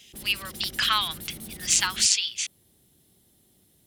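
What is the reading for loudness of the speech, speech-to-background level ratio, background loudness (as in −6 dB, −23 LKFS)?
−24.0 LKFS, 15.0 dB, −39.0 LKFS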